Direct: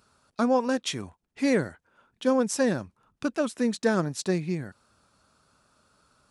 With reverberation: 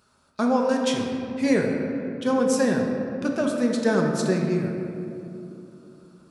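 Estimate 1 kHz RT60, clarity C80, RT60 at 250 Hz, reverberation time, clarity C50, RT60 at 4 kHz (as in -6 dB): 2.5 s, 3.5 dB, 3.9 s, 2.9 s, 2.5 dB, 1.3 s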